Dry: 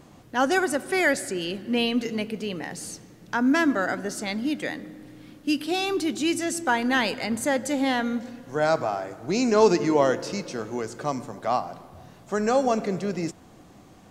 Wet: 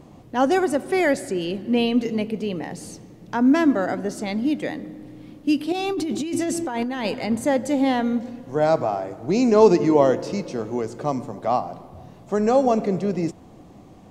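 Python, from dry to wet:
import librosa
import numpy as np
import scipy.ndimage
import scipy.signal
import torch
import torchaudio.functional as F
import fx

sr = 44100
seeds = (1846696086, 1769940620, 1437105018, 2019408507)

y = fx.peak_eq(x, sr, hz=1500.0, db=-7.0, octaves=0.65)
y = fx.over_compress(y, sr, threshold_db=-29.0, ratio=-1.0, at=(5.72, 7.05))
y = fx.high_shelf(y, sr, hz=2200.0, db=-9.5)
y = F.gain(torch.from_numpy(y), 5.0).numpy()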